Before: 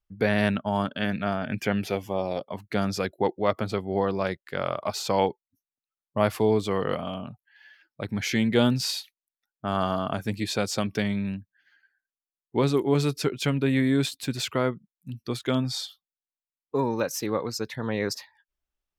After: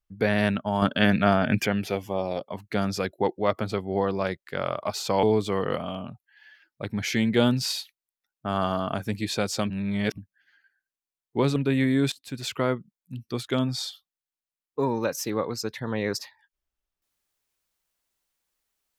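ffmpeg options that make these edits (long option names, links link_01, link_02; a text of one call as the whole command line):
ffmpeg -i in.wav -filter_complex "[0:a]asplit=8[link_01][link_02][link_03][link_04][link_05][link_06][link_07][link_08];[link_01]atrim=end=0.822[link_09];[link_02]atrim=start=0.818:end=1.662,asetpts=PTS-STARTPTS,volume=7dB[link_10];[link_03]atrim=start=1.658:end=5.232[link_11];[link_04]atrim=start=6.418:end=10.892[link_12];[link_05]atrim=start=10.888:end=11.372,asetpts=PTS-STARTPTS,areverse[link_13];[link_06]atrim=start=11.368:end=12.752[link_14];[link_07]atrim=start=13.518:end=14.08,asetpts=PTS-STARTPTS,afade=type=out:start_time=0.558:duration=0.004:curve=hsin:silence=0.149624[link_15];[link_08]atrim=start=14.08,asetpts=PTS-STARTPTS,afade=type=in:duration=0.48:silence=0.149624[link_16];[link_09][link_10]acrossfade=duration=0.004:curve1=hsin:curve2=hsin[link_17];[link_17][link_11]acrossfade=duration=0.004:curve1=hsin:curve2=hsin[link_18];[link_18][link_12]acrossfade=duration=0.004:curve1=hsin:curve2=hsin[link_19];[link_19][link_13]acrossfade=duration=0.004:curve1=hsin:curve2=hsin[link_20];[link_20][link_14]acrossfade=duration=0.004:curve1=hsin:curve2=hsin[link_21];[link_15][link_16]concat=n=2:v=0:a=1[link_22];[link_21][link_22]acrossfade=duration=0.004:curve1=hsin:curve2=hsin" out.wav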